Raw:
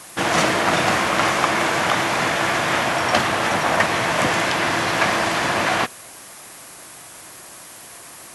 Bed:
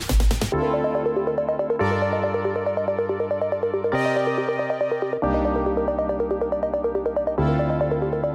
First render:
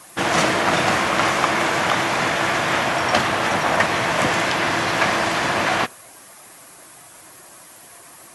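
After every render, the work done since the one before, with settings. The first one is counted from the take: noise reduction 6 dB, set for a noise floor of -41 dBFS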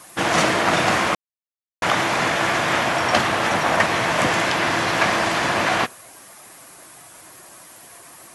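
1.15–1.82 s: mute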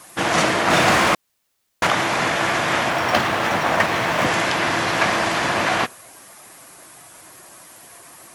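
0.70–1.87 s: power-law waveshaper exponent 0.7; 2.90–4.26 s: median filter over 5 samples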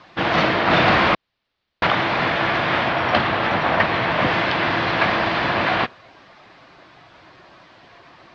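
steep low-pass 4.4 kHz 36 dB/octave; bass shelf 99 Hz +6 dB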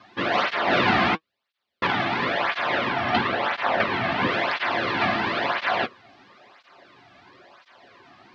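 comb of notches 160 Hz; cancelling through-zero flanger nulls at 0.98 Hz, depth 2.2 ms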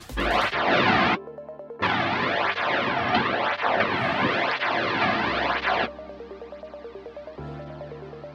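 add bed -16 dB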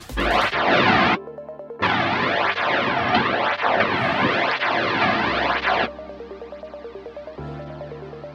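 trim +3.5 dB

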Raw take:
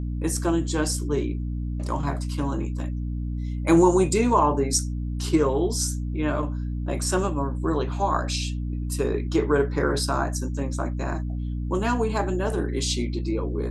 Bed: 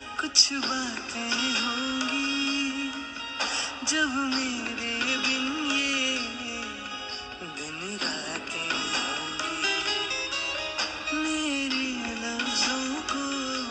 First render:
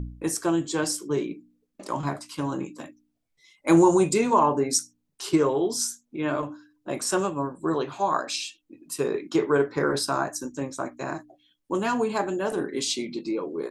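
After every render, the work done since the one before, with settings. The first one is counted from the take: de-hum 60 Hz, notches 5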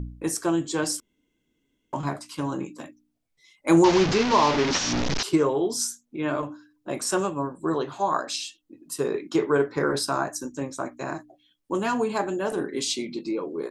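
1.00–1.93 s: room tone; 3.84–5.23 s: one-bit delta coder 32 kbps, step -18 dBFS; 7.77–9.05 s: peaking EQ 2.4 kHz -9.5 dB 0.22 oct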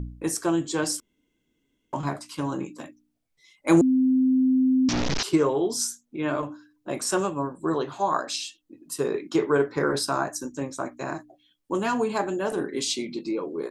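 3.81–4.89 s: bleep 259 Hz -17 dBFS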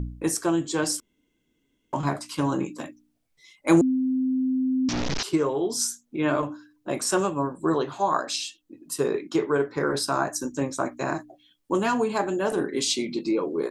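gain riding within 4 dB 0.5 s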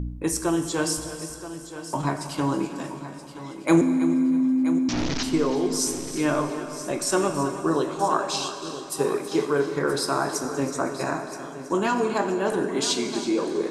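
multi-head delay 325 ms, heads first and third, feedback 43%, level -13.5 dB; plate-style reverb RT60 2.9 s, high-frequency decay 0.85×, DRR 8 dB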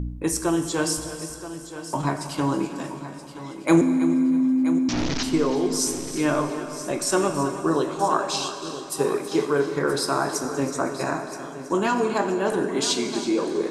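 trim +1 dB

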